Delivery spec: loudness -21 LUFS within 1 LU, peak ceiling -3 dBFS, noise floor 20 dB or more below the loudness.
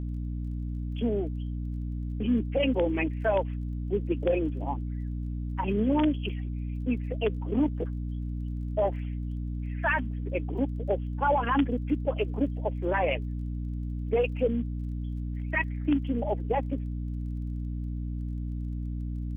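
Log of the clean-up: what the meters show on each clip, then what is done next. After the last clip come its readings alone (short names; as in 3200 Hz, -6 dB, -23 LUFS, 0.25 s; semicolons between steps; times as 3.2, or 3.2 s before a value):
ticks 21/s; hum 60 Hz; harmonics up to 300 Hz; hum level -30 dBFS; loudness -30.5 LUFS; peak -14.5 dBFS; loudness target -21.0 LUFS
-> de-click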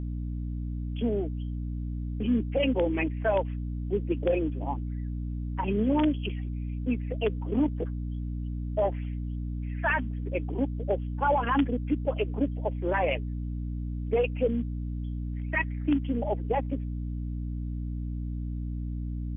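ticks 0.052/s; hum 60 Hz; harmonics up to 300 Hz; hum level -30 dBFS
-> de-hum 60 Hz, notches 5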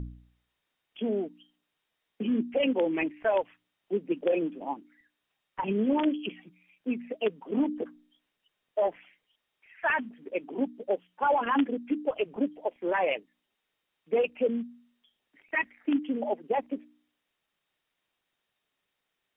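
hum none; loudness -30.5 LUFS; peak -16.0 dBFS; loudness target -21.0 LUFS
-> gain +9.5 dB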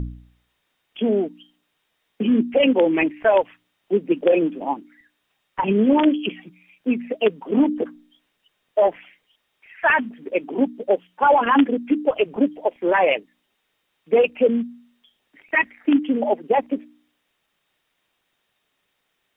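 loudness -21.0 LUFS; peak -6.5 dBFS; noise floor -73 dBFS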